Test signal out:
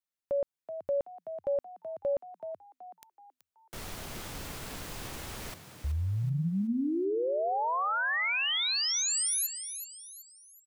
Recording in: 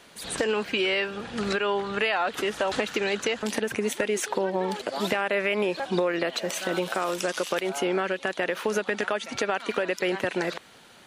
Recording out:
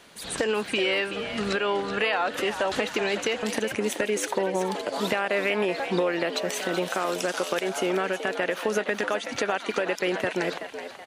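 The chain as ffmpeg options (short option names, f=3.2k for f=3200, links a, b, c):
-filter_complex "[0:a]asplit=5[a][b][c][d][e];[b]adelay=377,afreqshift=83,volume=-10dB[f];[c]adelay=754,afreqshift=166,volume=-18.2dB[g];[d]adelay=1131,afreqshift=249,volume=-26.4dB[h];[e]adelay=1508,afreqshift=332,volume=-34.5dB[i];[a][f][g][h][i]amix=inputs=5:normalize=0"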